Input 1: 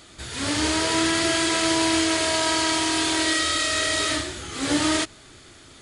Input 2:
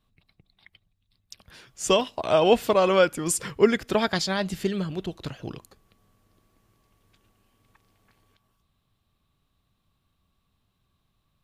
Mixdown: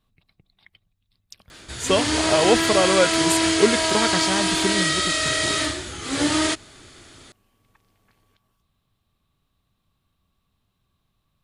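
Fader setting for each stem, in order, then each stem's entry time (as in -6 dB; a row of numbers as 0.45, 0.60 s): +1.0, +0.5 dB; 1.50, 0.00 s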